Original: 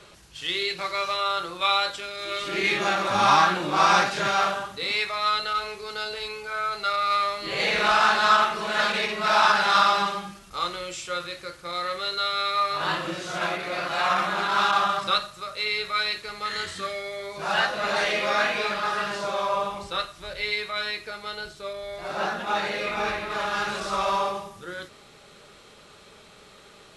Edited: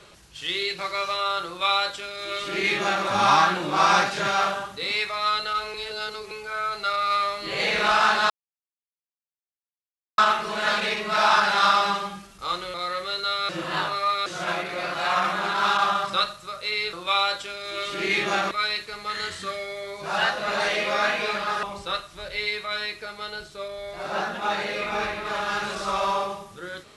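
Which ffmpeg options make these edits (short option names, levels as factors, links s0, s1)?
-filter_complex "[0:a]asplit=10[s0][s1][s2][s3][s4][s5][s6][s7][s8][s9];[s0]atrim=end=5.742[s10];[s1]atrim=start=5.738:end=6.312,asetpts=PTS-STARTPTS,areverse[s11];[s2]atrim=start=6.308:end=8.3,asetpts=PTS-STARTPTS,afade=t=out:st=1.988:d=0.004:c=hsin,apad=pad_dur=1.88[s12];[s3]atrim=start=8.3:end=10.862,asetpts=PTS-STARTPTS,afade=t=in:d=0.004:c=hsin[s13];[s4]atrim=start=11.678:end=12.432[s14];[s5]atrim=start=12.428:end=13.202,asetpts=PTS-STARTPTS,areverse[s15];[s6]atrim=start=13.198:end=15.872[s16];[s7]atrim=start=1.468:end=3.052[s17];[s8]atrim=start=15.868:end=18.992[s18];[s9]atrim=start=19.678[s19];[s10][s11]acrossfade=d=0.004:c1=hsin:c2=hsin[s20];[s12][s13]concat=n=2:v=0:a=1[s21];[s20][s21]acrossfade=d=0.004:c1=hsin:c2=hsin[s22];[s22][s14]acrossfade=d=0.004:c1=hsin:c2=hsin[s23];[s23][s15]acrossfade=d=0.004:c1=hsin:c2=hsin[s24];[s24][s16]acrossfade=d=0.004:c1=hsin:c2=hsin[s25];[s25][s17]acrossfade=d=0.004:c1=hsin:c2=hsin[s26];[s26][s18]acrossfade=d=0.004:c1=hsin:c2=hsin[s27];[s27][s19]acrossfade=d=0.004:c1=hsin:c2=hsin"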